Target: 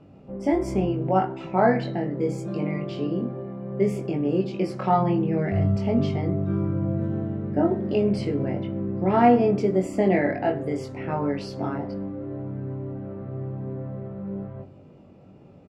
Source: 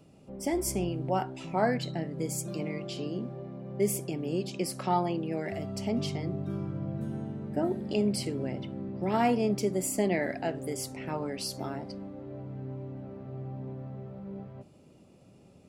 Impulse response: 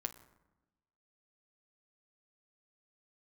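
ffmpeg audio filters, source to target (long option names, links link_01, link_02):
-filter_complex "[0:a]firequalizer=gain_entry='entry(1400,0);entry(3300,-9);entry(11000,-30)':delay=0.05:min_phase=1,asplit=2[link_01][link_02];[1:a]atrim=start_sample=2205,asetrate=70560,aresample=44100,adelay=21[link_03];[link_02][link_03]afir=irnorm=-1:irlink=0,volume=2.5dB[link_04];[link_01][link_04]amix=inputs=2:normalize=0,asplit=3[link_05][link_06][link_07];[link_05]afade=type=out:start_time=4.98:duration=0.02[link_08];[link_06]asubboost=boost=2.5:cutoff=230,afade=type=in:start_time=4.98:duration=0.02,afade=type=out:start_time=5.75:duration=0.02[link_09];[link_07]afade=type=in:start_time=5.75:duration=0.02[link_10];[link_08][link_09][link_10]amix=inputs=3:normalize=0,volume=5.5dB"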